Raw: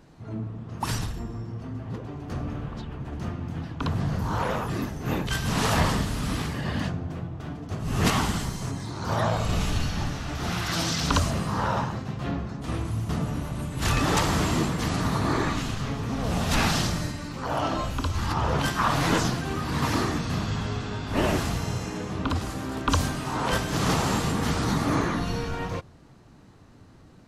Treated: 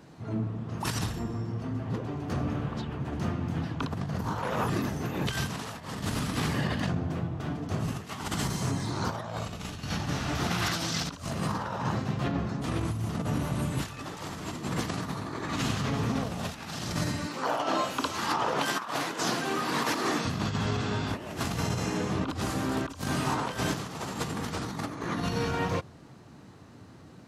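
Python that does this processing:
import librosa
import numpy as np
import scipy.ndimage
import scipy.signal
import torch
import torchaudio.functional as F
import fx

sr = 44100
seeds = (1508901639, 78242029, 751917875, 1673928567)

y = fx.highpass(x, sr, hz=290.0, slope=12, at=(17.27, 20.25))
y = fx.over_compress(y, sr, threshold_db=-29.0, ratio=-0.5)
y = scipy.signal.sosfilt(scipy.signal.butter(2, 91.0, 'highpass', fs=sr, output='sos'), y)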